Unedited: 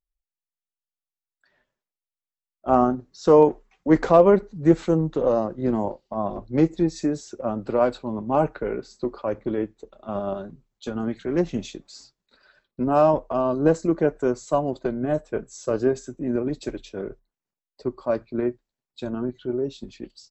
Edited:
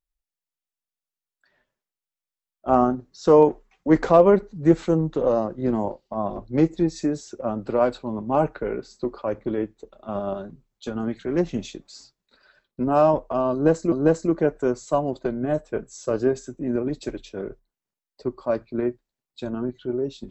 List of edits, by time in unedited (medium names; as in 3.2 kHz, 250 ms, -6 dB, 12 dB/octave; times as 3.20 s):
13.52–13.92 s: loop, 2 plays